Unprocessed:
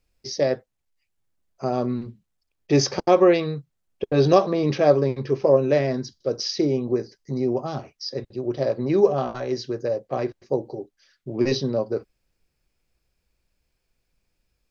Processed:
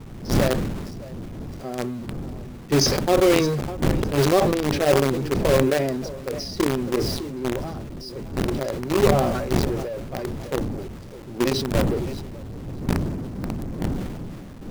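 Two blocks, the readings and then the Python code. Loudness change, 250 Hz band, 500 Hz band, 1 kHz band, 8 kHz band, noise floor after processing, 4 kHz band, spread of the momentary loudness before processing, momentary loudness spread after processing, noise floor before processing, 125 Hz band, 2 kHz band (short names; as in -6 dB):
-0.5 dB, +1.5 dB, -1.5 dB, +0.5 dB, n/a, -38 dBFS, +3.5 dB, 14 LU, 16 LU, -77 dBFS, +4.0 dB, +5.5 dB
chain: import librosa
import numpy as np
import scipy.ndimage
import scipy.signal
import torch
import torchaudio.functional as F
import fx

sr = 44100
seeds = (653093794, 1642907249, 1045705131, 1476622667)

p1 = fx.spec_quant(x, sr, step_db=15)
p2 = fx.dmg_wind(p1, sr, seeds[0], corner_hz=190.0, level_db=-27.0)
p3 = fx.dynamic_eq(p2, sr, hz=290.0, q=0.97, threshold_db=-31.0, ratio=4.0, max_db=4)
p4 = fx.echo_feedback(p3, sr, ms=606, feedback_pct=33, wet_db=-16)
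p5 = fx.quant_companded(p4, sr, bits=2)
p6 = p4 + (p5 * librosa.db_to_amplitude(-5.0))
p7 = fx.sustainer(p6, sr, db_per_s=35.0)
y = p7 * librosa.db_to_amplitude(-11.5)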